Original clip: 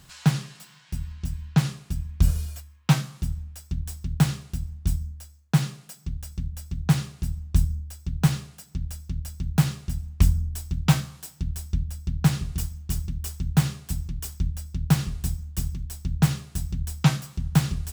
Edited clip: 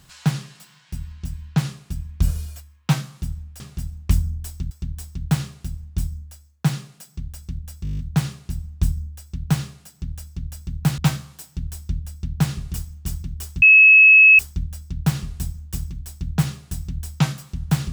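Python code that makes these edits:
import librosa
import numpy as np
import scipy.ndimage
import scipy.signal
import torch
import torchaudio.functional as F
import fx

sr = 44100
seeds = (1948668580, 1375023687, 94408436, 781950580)

y = fx.edit(x, sr, fx.stutter(start_s=6.72, slice_s=0.02, count=9),
    fx.move(start_s=9.71, length_s=1.11, to_s=3.6),
    fx.bleep(start_s=13.46, length_s=0.77, hz=2580.0, db=-6.5), tone=tone)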